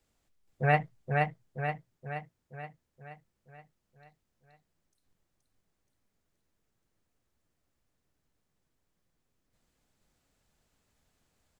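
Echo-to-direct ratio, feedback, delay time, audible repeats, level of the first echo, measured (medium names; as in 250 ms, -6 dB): -1.5 dB, 55%, 475 ms, 7, -3.0 dB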